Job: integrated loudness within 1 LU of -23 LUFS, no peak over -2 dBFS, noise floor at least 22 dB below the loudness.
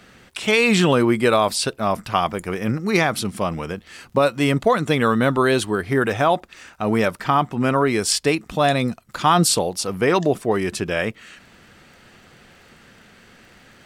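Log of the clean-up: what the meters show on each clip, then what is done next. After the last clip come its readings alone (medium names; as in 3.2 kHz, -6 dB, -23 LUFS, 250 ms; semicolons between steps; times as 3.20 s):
tick rate 39 per s; loudness -20.0 LUFS; peak level -5.0 dBFS; loudness target -23.0 LUFS
-> de-click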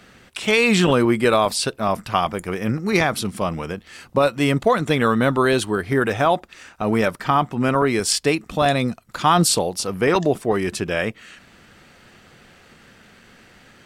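tick rate 0.72 per s; loudness -20.0 LUFS; peak level -5.0 dBFS; loudness target -23.0 LUFS
-> trim -3 dB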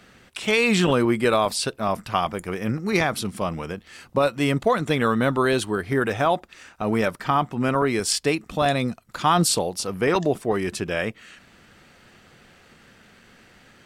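loudness -23.0 LUFS; peak level -8.0 dBFS; noise floor -54 dBFS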